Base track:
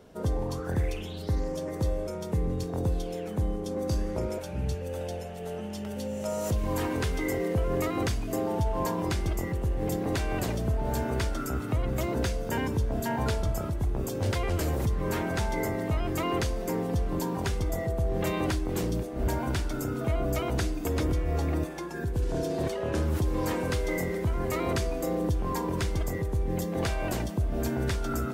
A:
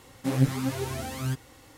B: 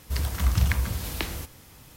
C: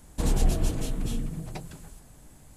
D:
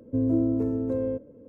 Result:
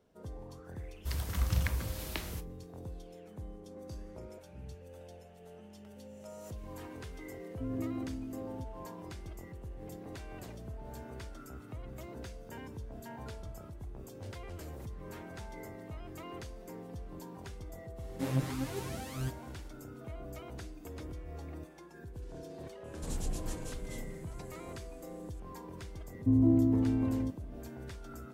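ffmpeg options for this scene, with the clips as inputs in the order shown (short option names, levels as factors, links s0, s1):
-filter_complex "[4:a]asplit=2[s0][s1];[0:a]volume=0.15[s2];[2:a]agate=range=0.0224:threshold=0.01:ratio=3:release=100:detection=peak[s3];[s0]equalizer=f=460:t=o:w=0.68:g=-14.5[s4];[1:a]asoftclip=type=hard:threshold=0.158[s5];[3:a]equalizer=f=7300:w=0.87:g=6.5[s6];[s1]aecho=1:1:1:0.94[s7];[s3]atrim=end=1.96,asetpts=PTS-STARTPTS,volume=0.398,afade=t=in:d=0.004:c=hsin,afade=t=out:st=1.956:d=0.004:c=hsin,adelay=950[s8];[s4]atrim=end=1.48,asetpts=PTS-STARTPTS,volume=0.282,afade=t=in:d=0.004:c=hsin,afade=t=out:st=1.476:d=0.004:c=hsin,adelay=7470[s9];[s5]atrim=end=1.77,asetpts=PTS-STARTPTS,volume=0.422,afade=t=in:d=0.05,afade=t=out:st=1.72:d=0.05,adelay=17950[s10];[s6]atrim=end=2.56,asetpts=PTS-STARTPTS,volume=0.211,afade=t=in:d=0.004:c=hsin,afade=t=out:st=2.556:d=0.004:c=hsin,adelay=22840[s11];[s7]atrim=end=1.48,asetpts=PTS-STARTPTS,volume=0.668,afade=t=in:d=0.004:c=hsin,afade=t=out:st=1.476:d=0.004:c=hsin,adelay=26130[s12];[s2][s8][s9][s10][s11][s12]amix=inputs=6:normalize=0"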